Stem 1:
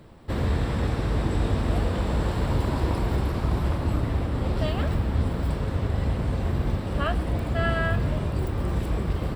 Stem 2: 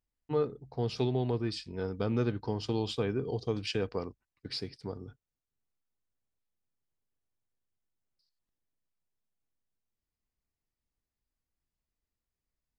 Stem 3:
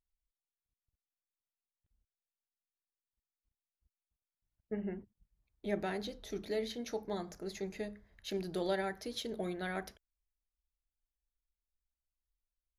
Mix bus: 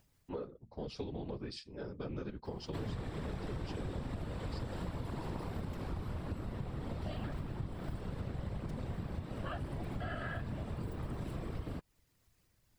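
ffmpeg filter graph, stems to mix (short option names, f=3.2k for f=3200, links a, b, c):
-filter_complex "[0:a]adelay=2450,volume=2dB[a];[1:a]acompressor=mode=upward:threshold=-44dB:ratio=2.5,volume=-1dB[b];[2:a]acrusher=bits=3:mix=0:aa=0.000001,volume=-3.5dB[c];[a][b][c]amix=inputs=3:normalize=0,afftfilt=real='hypot(re,im)*cos(2*PI*random(0))':imag='hypot(re,im)*sin(2*PI*random(1))':win_size=512:overlap=0.75,acompressor=threshold=-37dB:ratio=6"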